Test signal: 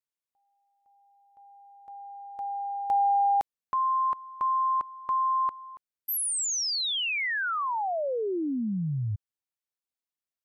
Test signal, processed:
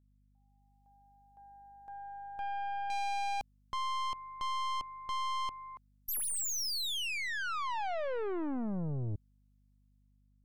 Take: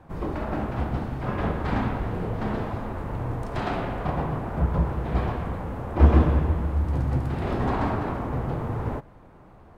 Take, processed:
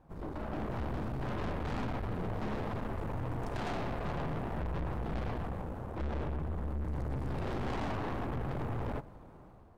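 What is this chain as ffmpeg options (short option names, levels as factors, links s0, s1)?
-af "equalizer=f=2000:w=0.92:g=-4.5,dynaudnorm=f=160:g=7:m=2.99,aeval=exprs='(tanh(20*val(0)+0.6)-tanh(0.6))/20':c=same,aeval=exprs='val(0)+0.00112*(sin(2*PI*50*n/s)+sin(2*PI*2*50*n/s)/2+sin(2*PI*3*50*n/s)/3+sin(2*PI*4*50*n/s)/4+sin(2*PI*5*50*n/s)/5)':c=same,volume=0.398"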